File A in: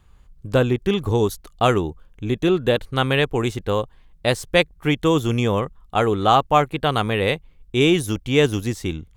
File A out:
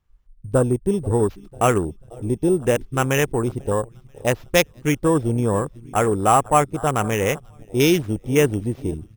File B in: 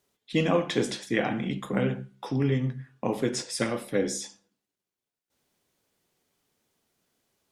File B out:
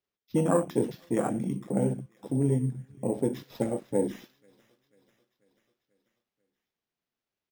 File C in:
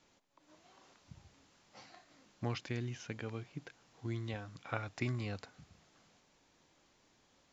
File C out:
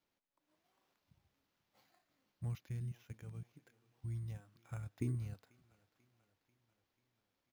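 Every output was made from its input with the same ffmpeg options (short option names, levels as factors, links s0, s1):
-af "aecho=1:1:490|980|1470|1960|2450:0.106|0.0625|0.0369|0.0218|0.0128,afwtdn=0.0501,acrusher=samples=5:mix=1:aa=0.000001"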